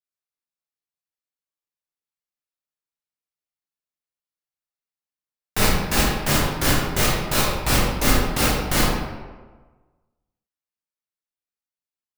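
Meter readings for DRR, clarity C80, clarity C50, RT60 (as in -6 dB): -6.5 dB, 2.5 dB, 0.0 dB, 1.4 s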